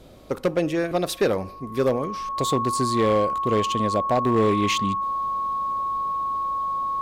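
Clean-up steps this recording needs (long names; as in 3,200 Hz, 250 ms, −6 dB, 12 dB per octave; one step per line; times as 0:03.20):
clipped peaks rebuilt −14 dBFS
hum removal 52.1 Hz, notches 6
notch filter 1,100 Hz, Q 30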